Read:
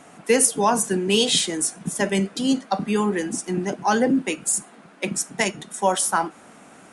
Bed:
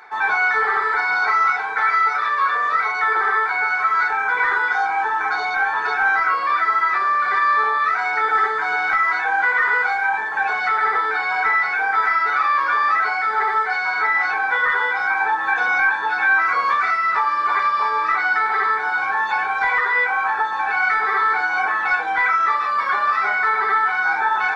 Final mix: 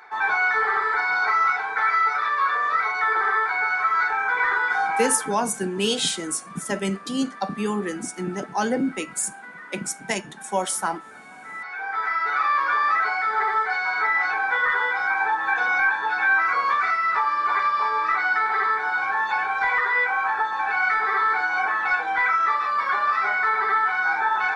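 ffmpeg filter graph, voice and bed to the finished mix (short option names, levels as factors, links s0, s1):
-filter_complex "[0:a]adelay=4700,volume=0.631[s0];[1:a]volume=7.5,afade=t=out:st=5:d=0.35:silence=0.0944061,afade=t=in:st=11.45:d=1.03:silence=0.0944061[s1];[s0][s1]amix=inputs=2:normalize=0"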